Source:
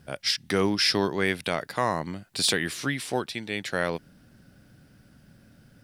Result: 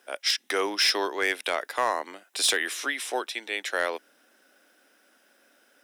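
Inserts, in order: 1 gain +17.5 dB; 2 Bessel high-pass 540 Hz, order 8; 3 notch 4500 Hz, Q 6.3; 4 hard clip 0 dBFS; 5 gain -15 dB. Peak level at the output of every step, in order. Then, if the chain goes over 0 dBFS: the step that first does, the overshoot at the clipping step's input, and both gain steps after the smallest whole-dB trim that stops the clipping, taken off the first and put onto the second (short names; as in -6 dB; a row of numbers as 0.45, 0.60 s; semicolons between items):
+6.5, +6.5, +5.5, 0.0, -15.0 dBFS; step 1, 5.5 dB; step 1 +11.5 dB, step 5 -9 dB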